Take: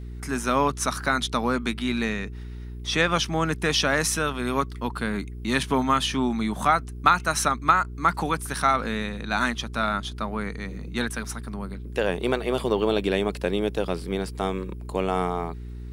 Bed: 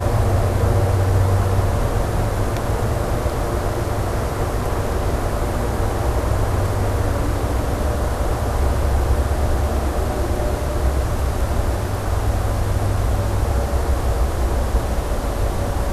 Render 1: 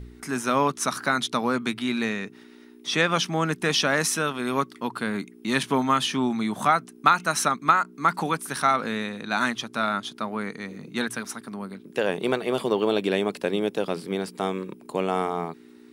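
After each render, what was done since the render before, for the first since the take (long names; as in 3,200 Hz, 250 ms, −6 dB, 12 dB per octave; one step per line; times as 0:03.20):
hum removal 60 Hz, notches 3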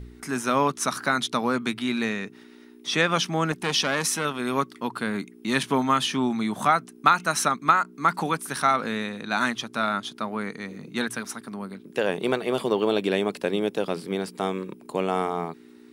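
0:03.52–0:04.25: saturating transformer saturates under 1,600 Hz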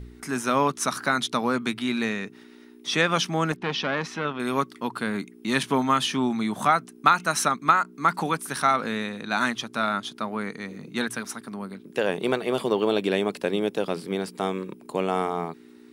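0:03.56–0:04.40: high-frequency loss of the air 230 metres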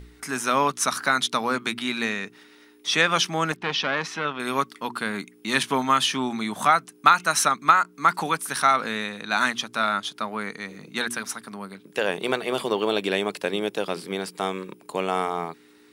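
tilt shelving filter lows −4 dB, about 630 Hz
hum removal 119.8 Hz, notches 3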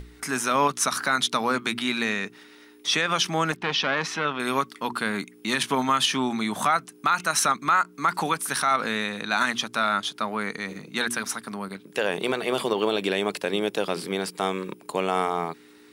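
in parallel at −1 dB: output level in coarse steps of 21 dB
on the sum: brickwall limiter −11 dBFS, peak gain reduction 11.5 dB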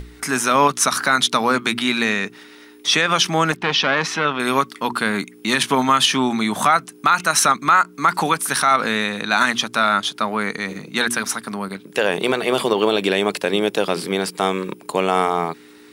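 level +6.5 dB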